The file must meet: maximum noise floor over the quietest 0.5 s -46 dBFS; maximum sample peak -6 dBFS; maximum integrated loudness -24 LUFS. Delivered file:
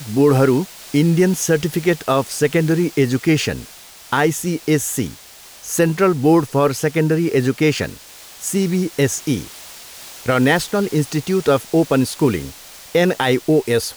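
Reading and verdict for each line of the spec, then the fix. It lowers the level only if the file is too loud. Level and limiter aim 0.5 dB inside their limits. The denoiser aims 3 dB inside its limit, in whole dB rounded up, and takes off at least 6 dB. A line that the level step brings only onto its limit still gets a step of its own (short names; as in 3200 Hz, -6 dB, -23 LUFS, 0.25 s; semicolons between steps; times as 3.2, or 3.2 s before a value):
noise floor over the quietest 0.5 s -41 dBFS: fail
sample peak -4.5 dBFS: fail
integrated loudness -18.0 LUFS: fail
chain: gain -6.5 dB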